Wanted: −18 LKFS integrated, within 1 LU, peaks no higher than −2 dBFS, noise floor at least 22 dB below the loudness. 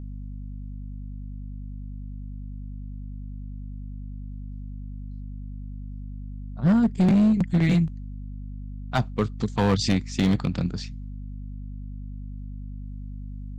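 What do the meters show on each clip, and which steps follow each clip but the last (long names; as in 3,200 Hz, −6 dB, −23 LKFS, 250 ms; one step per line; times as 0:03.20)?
share of clipped samples 1.4%; peaks flattened at −15.0 dBFS; mains hum 50 Hz; hum harmonics up to 250 Hz; level of the hum −33 dBFS; integrated loudness −23.0 LKFS; sample peak −15.0 dBFS; target loudness −18.0 LKFS
→ clipped peaks rebuilt −15 dBFS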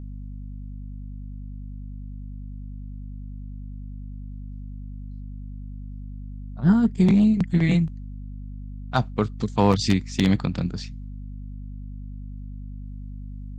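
share of clipped samples 0.0%; mains hum 50 Hz; hum harmonics up to 250 Hz; level of the hum −33 dBFS
→ hum removal 50 Hz, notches 5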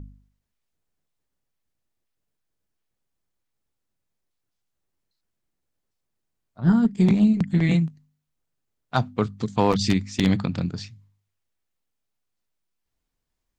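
mains hum none found; integrated loudness −22.5 LKFS; sample peak −5.5 dBFS; target loudness −18.0 LKFS
→ level +4.5 dB
brickwall limiter −2 dBFS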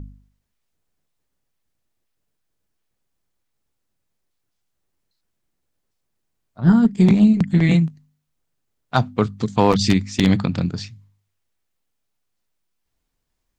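integrated loudness −18.0 LKFS; sample peak −2.0 dBFS; background noise floor −75 dBFS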